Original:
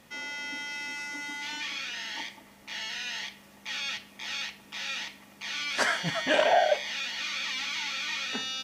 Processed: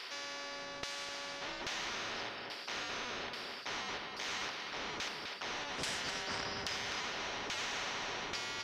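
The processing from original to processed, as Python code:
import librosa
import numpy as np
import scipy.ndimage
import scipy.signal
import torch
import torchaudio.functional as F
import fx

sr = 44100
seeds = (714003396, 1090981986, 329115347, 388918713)

p1 = fx.band_shuffle(x, sr, order='2341')
p2 = fx.filter_lfo_bandpass(p1, sr, shape='saw_down', hz=1.2, low_hz=360.0, high_hz=2900.0, q=1.0)
p3 = fx.high_shelf_res(p2, sr, hz=4800.0, db=-9.5, q=1.5)
p4 = p3 + fx.echo_single(p3, sr, ms=254, db=-15.5, dry=0)
y = fx.spectral_comp(p4, sr, ratio=4.0)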